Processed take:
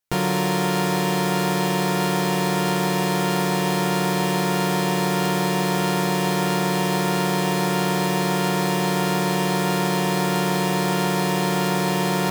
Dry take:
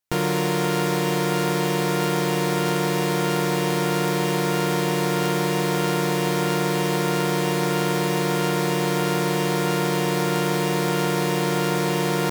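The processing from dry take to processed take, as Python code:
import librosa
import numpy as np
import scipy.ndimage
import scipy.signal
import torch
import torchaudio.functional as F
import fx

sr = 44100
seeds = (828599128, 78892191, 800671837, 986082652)

y = fx.doubler(x, sr, ms=16.0, db=-4.5)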